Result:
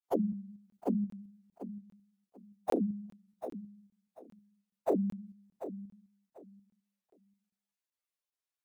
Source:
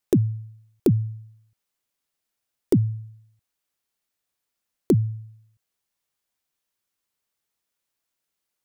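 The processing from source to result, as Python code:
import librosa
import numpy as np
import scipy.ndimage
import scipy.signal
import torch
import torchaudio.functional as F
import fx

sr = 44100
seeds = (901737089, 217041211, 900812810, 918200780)

p1 = fx.pitch_bins(x, sr, semitones=10.5)
p2 = fx.low_shelf(p1, sr, hz=140.0, db=-11.0)
p3 = fx.level_steps(p2, sr, step_db=17)
p4 = p2 + F.gain(torch.from_numpy(p3), 2.0).numpy()
p5 = fx.granulator(p4, sr, seeds[0], grain_ms=100.0, per_s=20.0, spray_ms=27.0, spread_st=0)
p6 = p5 + fx.echo_feedback(p5, sr, ms=741, feedback_pct=22, wet_db=-12, dry=0)
p7 = fx.buffer_crackle(p6, sr, first_s=0.7, period_s=0.4, block=1024, kind='zero')
y = F.gain(torch.from_numpy(p7), -5.5).numpy()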